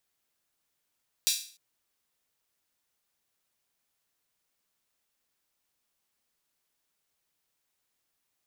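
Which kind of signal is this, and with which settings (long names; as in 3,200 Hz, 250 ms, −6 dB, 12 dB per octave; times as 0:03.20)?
open synth hi-hat length 0.30 s, high-pass 3,900 Hz, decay 0.44 s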